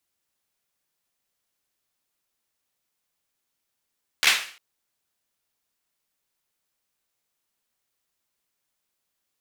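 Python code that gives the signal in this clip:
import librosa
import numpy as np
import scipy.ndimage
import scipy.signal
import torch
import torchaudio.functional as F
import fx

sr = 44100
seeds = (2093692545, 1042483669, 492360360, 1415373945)

y = fx.drum_clap(sr, seeds[0], length_s=0.35, bursts=4, spacing_ms=13, hz=2300.0, decay_s=0.45)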